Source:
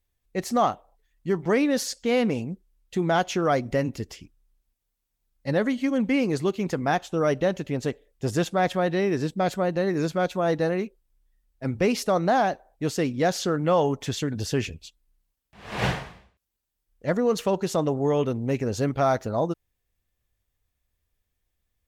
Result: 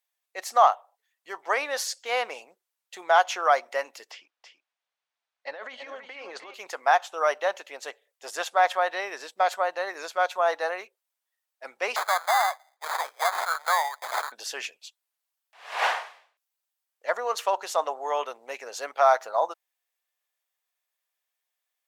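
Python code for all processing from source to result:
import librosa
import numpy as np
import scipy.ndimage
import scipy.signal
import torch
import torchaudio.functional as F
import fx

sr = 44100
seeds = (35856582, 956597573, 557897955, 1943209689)

y = fx.chain(x, sr, fx.lowpass(hz=3600.0, slope=12),
    fx.over_compress(threshold_db=-26.0, ratio=-0.5),
    fx.echo_single(ms=328, db=-7.5), at=(4.11, 6.54))
y = fx.chain(y, sr, fx.highpass(hz=780.0, slope=24),
    fx.sample_hold(seeds[0], rate_hz=2800.0, jitter_pct=0),
    fx.band_squash(depth_pct=70), at=(11.96, 14.32))
y = scipy.signal.sosfilt(scipy.signal.butter(4, 650.0, 'highpass', fs=sr, output='sos'), y)
y = fx.dynamic_eq(y, sr, hz=1000.0, q=0.76, threshold_db=-38.0, ratio=4.0, max_db=7)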